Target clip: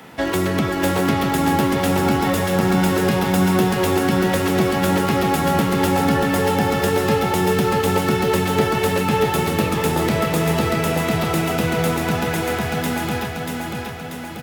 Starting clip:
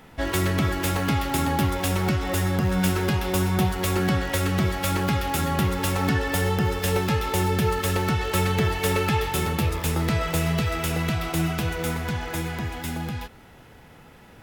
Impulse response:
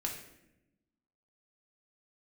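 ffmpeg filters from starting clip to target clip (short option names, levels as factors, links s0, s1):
-filter_complex "[0:a]highpass=150,acrossover=split=210|970[s0][s1][s2];[s0]acompressor=threshold=0.0251:ratio=4[s3];[s1]acompressor=threshold=0.0398:ratio=4[s4];[s2]acompressor=threshold=0.0158:ratio=4[s5];[s3][s4][s5]amix=inputs=3:normalize=0,aecho=1:1:637|1274|1911|2548|3185|3822|4459|5096:0.631|0.353|0.198|0.111|0.0621|0.0347|0.0195|0.0109,volume=2.66"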